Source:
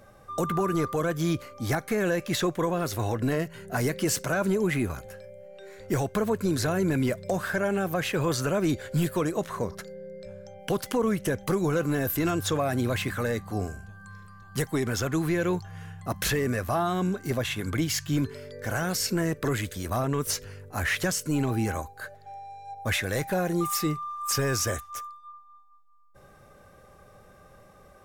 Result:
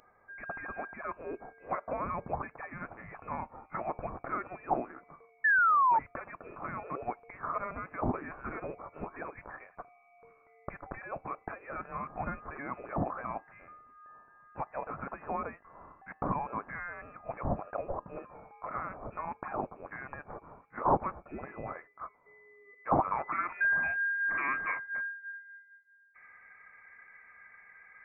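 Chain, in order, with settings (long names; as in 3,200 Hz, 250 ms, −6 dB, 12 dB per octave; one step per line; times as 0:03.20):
high-pass filter sweep 2,200 Hz → 870 Hz, 0:22.68–0:24.22
voice inversion scrambler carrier 2,800 Hz
sound drawn into the spectrogram fall, 0:05.44–0:05.99, 870–1,800 Hz −22 dBFS
level −2 dB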